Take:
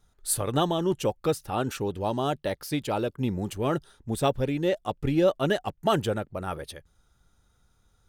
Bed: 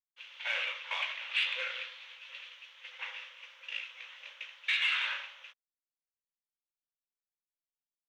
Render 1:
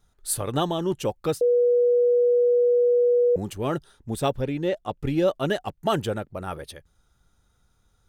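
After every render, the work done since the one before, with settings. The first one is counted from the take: 1.41–3.36 bleep 485 Hz -16 dBFS; 4.41–4.99 high shelf 5600 Hz -7.5 dB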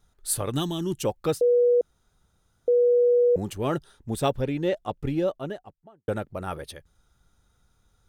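0.51–1.03 EQ curve 330 Hz 0 dB, 490 Hz -14 dB, 1900 Hz -4 dB, 8800 Hz +6 dB; 1.81–2.68 room tone; 4.7–6.08 studio fade out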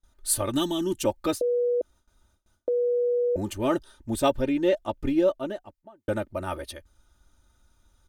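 gate with hold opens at -57 dBFS; comb 3.3 ms, depth 75%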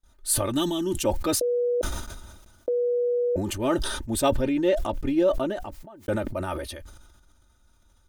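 sustainer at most 41 dB/s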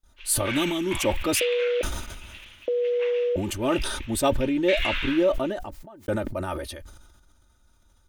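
add bed +1.5 dB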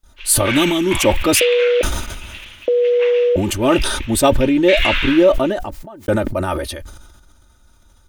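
gain +9.5 dB; limiter -2 dBFS, peak gain reduction 2 dB

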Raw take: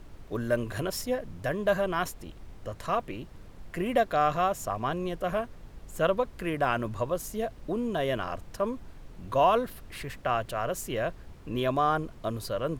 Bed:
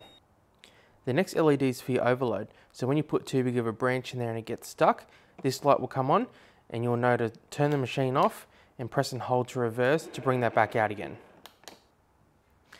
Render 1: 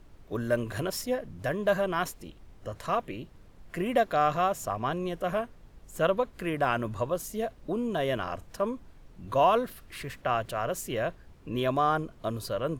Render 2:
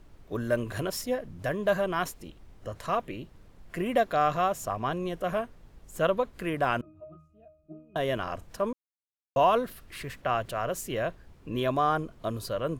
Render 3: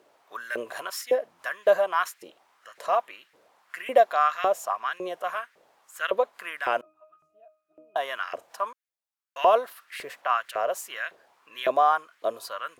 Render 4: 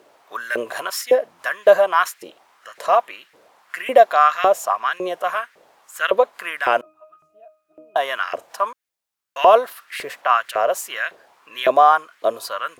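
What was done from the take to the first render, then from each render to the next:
noise print and reduce 6 dB
6.81–7.96 octave resonator D#, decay 0.47 s; 8.73–9.36 mute
LFO high-pass saw up 1.8 Hz 450–2000 Hz
gain +8 dB; limiter -1 dBFS, peak gain reduction 2 dB

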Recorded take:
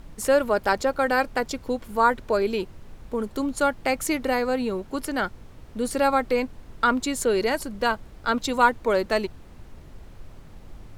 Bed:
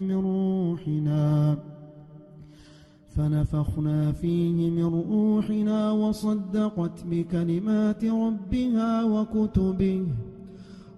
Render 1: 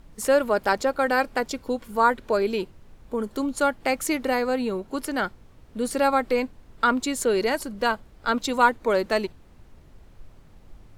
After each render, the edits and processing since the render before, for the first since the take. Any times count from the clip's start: noise print and reduce 6 dB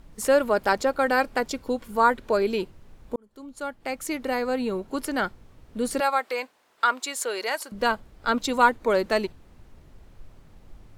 3.16–4.8 fade in; 6–7.72 HPF 690 Hz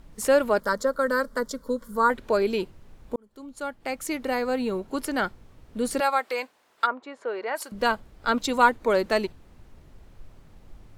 0.6–2.1 fixed phaser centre 510 Hz, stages 8; 3.93–4.79 short-mantissa float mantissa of 6-bit; 6.85–7.55 LPF 1000 Hz -> 1700 Hz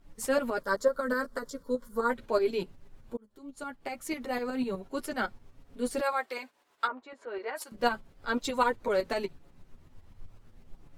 tremolo saw up 8 Hz, depth 65%; chorus voices 4, 0.33 Hz, delay 10 ms, depth 3 ms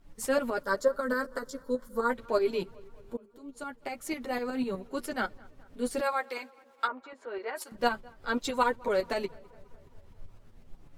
tape echo 0.209 s, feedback 67%, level -24 dB, low-pass 2500 Hz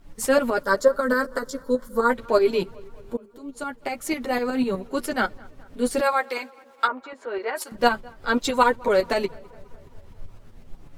gain +8 dB

